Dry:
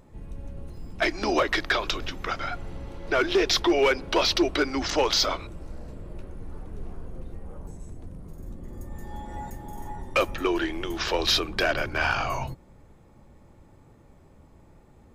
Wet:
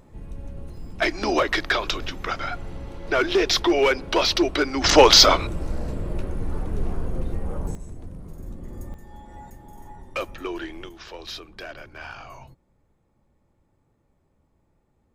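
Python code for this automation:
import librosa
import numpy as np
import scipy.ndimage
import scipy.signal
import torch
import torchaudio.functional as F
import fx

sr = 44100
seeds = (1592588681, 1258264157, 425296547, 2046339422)

y = fx.gain(x, sr, db=fx.steps((0.0, 2.0), (4.84, 11.0), (7.75, 2.5), (8.94, -6.0), (10.89, -13.5)))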